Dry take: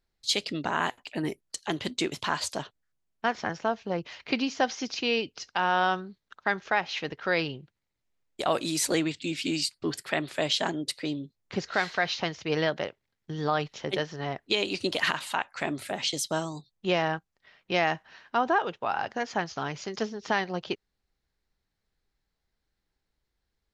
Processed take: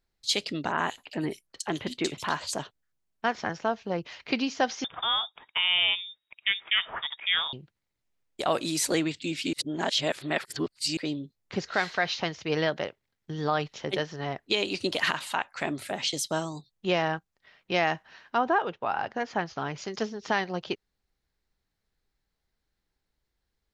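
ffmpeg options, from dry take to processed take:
-filter_complex "[0:a]asettb=1/sr,asplit=3[s0][s1][s2];[s0]atrim=end=0.724[s3];[s1]atrim=start=0.72:end=2.58,asetpts=PTS-STARTPTS,afade=t=in:d=0.004:c=qsin,afade=t=out:st=1.856:d=0.004:c=qsin,acrossover=split=3100[s4][s5];[s5]adelay=60[s6];[s4][s6]amix=inputs=2:normalize=0,atrim=end_sample=82026[s7];[s2]atrim=start=2.576[s8];[s3][s7]acrossfade=d=0.004:c1=hsin:c2=qsin[s9];[s9][s8]acrossfade=d=0.004:c1=qsin:c2=hsin,asettb=1/sr,asplit=3[s10][s11][s12];[s10]atrim=end=4.844[s13];[s11]atrim=start=4.84:end=7.53,asetpts=PTS-STARTPTS,afade=t=in:d=0.004:c=qsin,afade=t=out:st=2.686:d=0.004:c=qsin,lowpass=f=3200:t=q:w=0.5098,lowpass=f=3200:t=q:w=0.6013,lowpass=f=3200:t=q:w=0.9,lowpass=f=3200:t=q:w=2.563,afreqshift=-3800[s14];[s12]atrim=start=7.526[s15];[s13][s14]acrossfade=d=0.004:c1=hsin:c2=qsin[s16];[s16][s15]acrossfade=d=0.004:c1=qsin:c2=hsin,asettb=1/sr,asplit=3[s17][s18][s19];[s17]atrim=end=18.384[s20];[s18]atrim=start=18.38:end=19.78,asetpts=PTS-STARTPTS,afade=t=in:d=0.004:c=qsin,afade=t=out:st=1.396:d=0.004:c=qsin,aemphasis=mode=reproduction:type=50fm[s21];[s19]atrim=start=19.776[s22];[s20][s21]acrossfade=d=0.004:c1=hsin:c2=qsin[s23];[s23][s22]acrossfade=d=0.004:c1=qsin:c2=hsin,asplit=3[s24][s25][s26];[s24]atrim=end=9.532[s27];[s25]atrim=start=9.528:end=10.972,asetpts=PTS-STARTPTS,areverse[s28];[s26]atrim=start=10.968[s29];[s27][s28]acrossfade=d=0.004:c1=hsin:c2=hsin[s30];[s30][s29]acrossfade=d=0.004:c1=hsin:c2=hsin"

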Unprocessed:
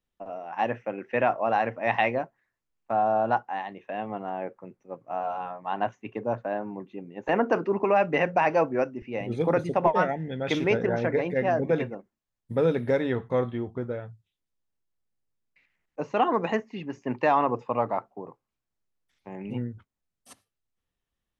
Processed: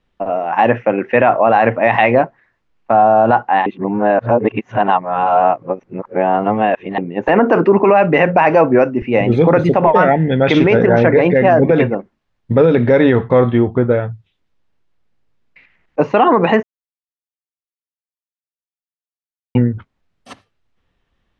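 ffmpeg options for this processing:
-filter_complex "[0:a]asplit=5[s0][s1][s2][s3][s4];[s0]atrim=end=3.662[s5];[s1]atrim=start=3.658:end=6.982,asetpts=PTS-STARTPTS,areverse[s6];[s2]atrim=start=6.978:end=16.63,asetpts=PTS-STARTPTS,afade=t=out:st=9.648:d=0.004:c=hsin[s7];[s3]atrim=start=16.63:end=19.55,asetpts=PTS-STARTPTS,volume=0[s8];[s4]atrim=start=19.55,asetpts=PTS-STARTPTS,afade=t=in:d=0.004:c=hsin[s9];[s5][s6]acrossfade=d=0.004:c1=hsin:c2=hsin[s10];[s7][s8][s9]concat=n=3:v=0:a=1[s11];[s10][s11]acrossfade=d=0.004:c1=hsin:c2=hsin,lowpass=3300,alimiter=level_in=9.44:limit=0.891:release=50:level=0:latency=1,volume=0.891"

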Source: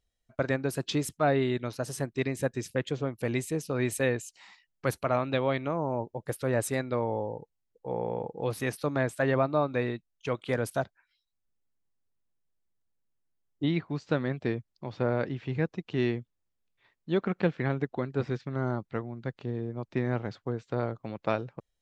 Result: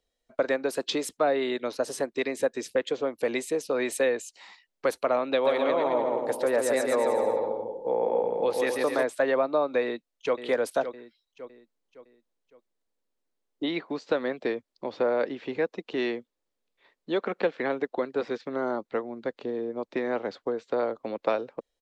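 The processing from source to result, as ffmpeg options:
-filter_complex "[0:a]asplit=3[s0][s1][s2];[s0]afade=t=out:st=5.44:d=0.02[s3];[s1]aecho=1:1:140|259|360.2|446.1|519.2|581.3|634.1|679:0.631|0.398|0.251|0.158|0.1|0.0631|0.0398|0.0251,afade=t=in:st=5.44:d=0.02,afade=t=out:st=9.03:d=0.02[s4];[s2]afade=t=in:st=9.03:d=0.02[s5];[s3][s4][s5]amix=inputs=3:normalize=0,asplit=2[s6][s7];[s7]afade=t=in:st=9.81:d=0.01,afade=t=out:st=10.38:d=0.01,aecho=0:1:560|1120|1680|2240:0.266073|0.106429|0.0425716|0.0170286[s8];[s6][s8]amix=inputs=2:normalize=0,equalizer=f=125:t=o:w=1:g=-11,equalizer=f=250:t=o:w=1:g=8,equalizer=f=500:t=o:w=1:g=12,equalizer=f=1000:t=o:w=1:g=5,equalizer=f=2000:t=o:w=1:g=4,equalizer=f=4000:t=o:w=1:g=7,equalizer=f=8000:t=o:w=1:g=4,acrossover=split=190|550[s9][s10][s11];[s9]acompressor=threshold=0.00398:ratio=4[s12];[s10]acompressor=threshold=0.0447:ratio=4[s13];[s11]acompressor=threshold=0.1:ratio=4[s14];[s12][s13][s14]amix=inputs=3:normalize=0,volume=0.668"

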